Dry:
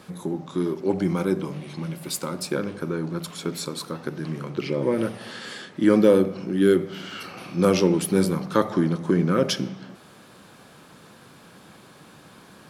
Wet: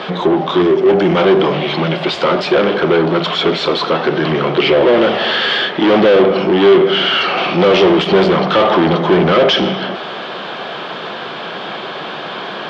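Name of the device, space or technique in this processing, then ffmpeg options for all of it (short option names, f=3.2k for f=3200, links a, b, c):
overdrive pedal into a guitar cabinet: -filter_complex "[0:a]asplit=2[a][b];[b]highpass=f=720:p=1,volume=34dB,asoftclip=type=tanh:threshold=-4.5dB[c];[a][c]amix=inputs=2:normalize=0,lowpass=f=2.1k:p=1,volume=-6dB,highpass=90,equalizer=f=100:t=q:w=4:g=-8,equalizer=f=270:t=q:w=4:g=-4,equalizer=f=390:t=q:w=4:g=5,equalizer=f=680:t=q:w=4:g=6,equalizer=f=3.2k:t=q:w=4:g=9,lowpass=f=4.6k:w=0.5412,lowpass=f=4.6k:w=1.3066,asettb=1/sr,asplit=3[d][e][f];[d]atrim=end=0.624[g];[e]atrim=start=0.62:end=1.17,asetpts=PTS-STARTPTS,afade=t=in:d=0.004:c=qsin,afade=t=out:st=0.546:d=0.004:c=qsin,equalizer=f=1k:t=o:w=1:g=-5,equalizer=f=4k:t=o:w=1:g=-6,equalizer=f=8k:t=o:w=1:g=6[h];[f]atrim=start=1.166[i];[g][h]acrossfade=d=0.004:c1=hsin:c2=qsin[j];[j][i]acrossfade=d=0.004:c1=qsin:c2=hsin"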